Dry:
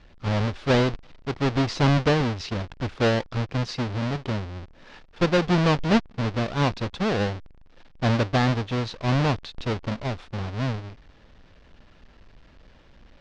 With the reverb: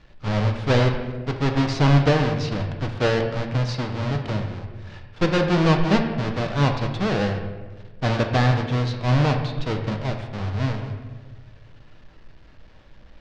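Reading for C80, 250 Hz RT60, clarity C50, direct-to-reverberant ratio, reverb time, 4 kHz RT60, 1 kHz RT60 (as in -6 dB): 8.0 dB, 1.5 s, 6.5 dB, 3.5 dB, 1.4 s, 0.90 s, 1.1 s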